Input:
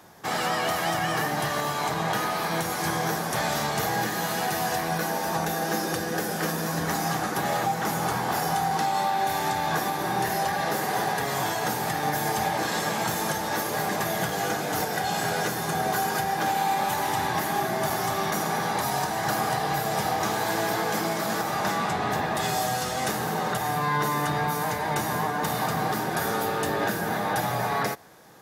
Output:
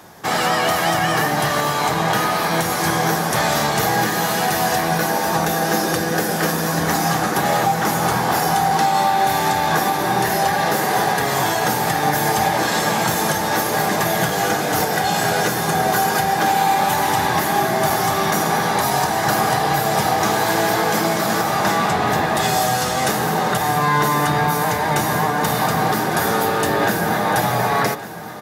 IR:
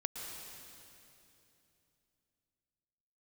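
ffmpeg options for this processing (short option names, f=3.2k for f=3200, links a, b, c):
-af "aecho=1:1:1155|2310|3465|4620|5775:0.178|0.0978|0.0538|0.0296|0.0163,volume=8dB"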